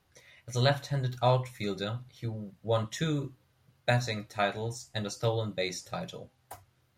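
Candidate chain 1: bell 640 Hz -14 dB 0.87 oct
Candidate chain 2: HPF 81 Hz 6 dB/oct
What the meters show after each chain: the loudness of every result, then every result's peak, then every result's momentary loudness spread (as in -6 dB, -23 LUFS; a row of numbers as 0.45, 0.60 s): -34.5, -32.5 LUFS; -14.5, -11.5 dBFS; 15, 15 LU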